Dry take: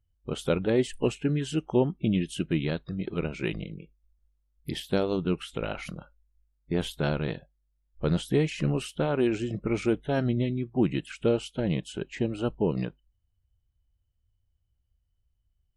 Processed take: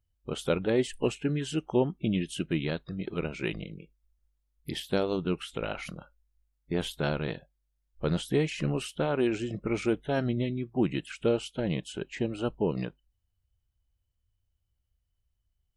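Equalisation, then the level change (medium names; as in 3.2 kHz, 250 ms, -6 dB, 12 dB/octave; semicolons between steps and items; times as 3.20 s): bass shelf 320 Hz -4 dB; 0.0 dB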